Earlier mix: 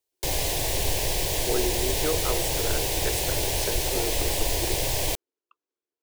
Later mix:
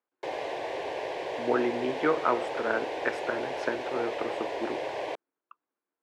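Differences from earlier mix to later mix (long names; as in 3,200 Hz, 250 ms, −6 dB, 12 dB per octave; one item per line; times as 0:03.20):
speech: remove four-pole ladder high-pass 360 Hz, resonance 60%
master: add flat-topped band-pass 840 Hz, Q 0.57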